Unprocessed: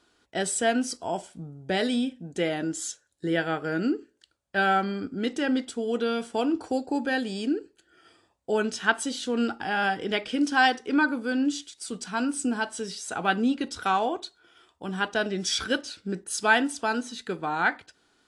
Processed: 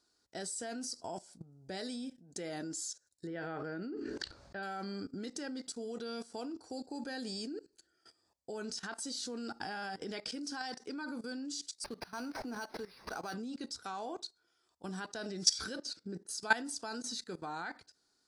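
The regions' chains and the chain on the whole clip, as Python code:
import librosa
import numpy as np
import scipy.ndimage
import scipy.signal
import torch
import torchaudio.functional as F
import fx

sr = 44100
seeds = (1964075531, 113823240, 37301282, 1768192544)

y = fx.chain(x, sr, fx.lowpass(hz=2700.0, slope=12),
    fx.sustainer(db_per_s=35.0), at=(3.27, 4.63))
y = fx.chain(y, sr, fx.law_mismatch(coded='mu'),
    fx.low_shelf(hz=200.0, db=-12.0),
    fx.resample_linear(factor=6), at=(11.84, 13.34))
y = fx.chain(y, sr, fx.highpass(hz=190.0, slope=12),
    fx.tilt_eq(slope=-2.0),
    fx.resample_bad(factor=2, down='none', up='filtered'), at=(15.76, 16.42))
y = fx.high_shelf_res(y, sr, hz=3800.0, db=6.5, q=3.0)
y = fx.level_steps(y, sr, step_db=18)
y = F.gain(torch.from_numpy(y), -4.5).numpy()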